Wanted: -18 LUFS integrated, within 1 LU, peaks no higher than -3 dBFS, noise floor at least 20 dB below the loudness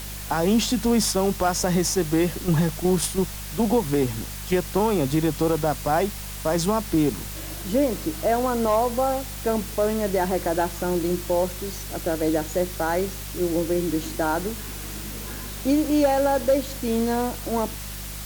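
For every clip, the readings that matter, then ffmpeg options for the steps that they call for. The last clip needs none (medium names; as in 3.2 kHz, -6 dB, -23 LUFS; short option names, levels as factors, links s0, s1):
hum 50 Hz; highest harmonic 200 Hz; hum level -34 dBFS; noise floor -34 dBFS; noise floor target -44 dBFS; loudness -24.0 LUFS; peak level -11.0 dBFS; loudness target -18.0 LUFS
-> -af "bandreject=f=50:t=h:w=4,bandreject=f=100:t=h:w=4,bandreject=f=150:t=h:w=4,bandreject=f=200:t=h:w=4"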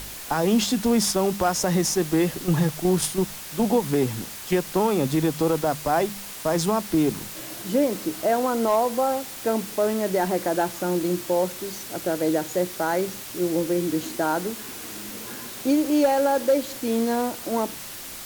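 hum not found; noise floor -37 dBFS; noise floor target -44 dBFS
-> -af "afftdn=nr=7:nf=-37"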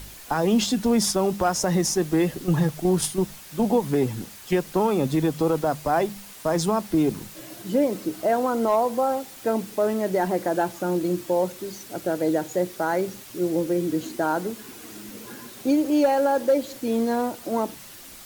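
noise floor -43 dBFS; noise floor target -44 dBFS
-> -af "afftdn=nr=6:nf=-43"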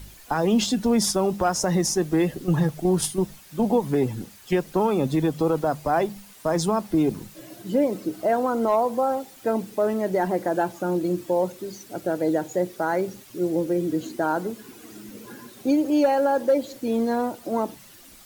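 noise floor -48 dBFS; loudness -24.0 LUFS; peak level -11.5 dBFS; loudness target -18.0 LUFS
-> -af "volume=2"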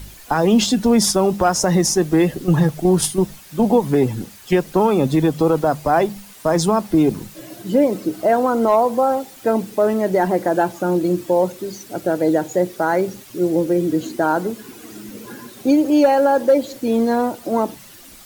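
loudness -18.0 LUFS; peak level -5.5 dBFS; noise floor -42 dBFS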